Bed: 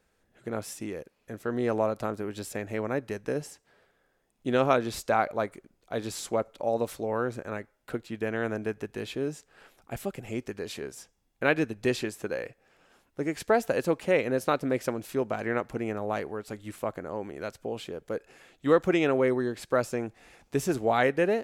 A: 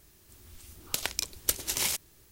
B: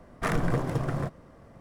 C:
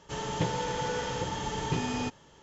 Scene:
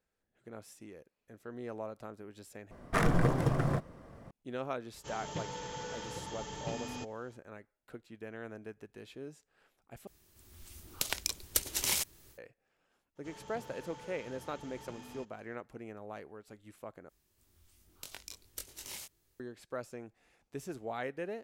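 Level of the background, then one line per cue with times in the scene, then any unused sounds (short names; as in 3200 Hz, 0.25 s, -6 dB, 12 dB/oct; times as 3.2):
bed -14.5 dB
2.71 replace with B -0.5 dB
4.95 add C -10.5 dB + high shelf 4900 Hz +6.5 dB
10.07 replace with A -7 dB + AGC
13.15 add C -16 dB, fades 0.02 s + soft clip -29.5 dBFS
17.09 replace with A -12.5 dB + chorus 2.8 Hz, delay 20 ms, depth 3.3 ms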